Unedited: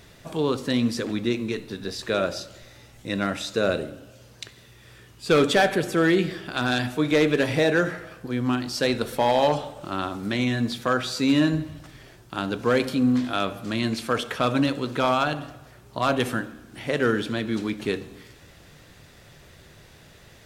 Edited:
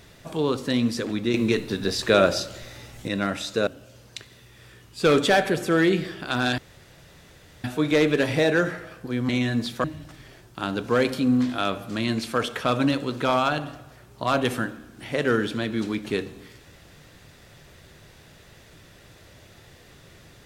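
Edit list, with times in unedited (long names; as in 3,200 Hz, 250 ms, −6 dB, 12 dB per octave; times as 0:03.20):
0:01.34–0:03.08: clip gain +6.5 dB
0:03.67–0:03.93: remove
0:06.84: splice in room tone 1.06 s
0:08.49–0:10.35: remove
0:10.90–0:11.59: remove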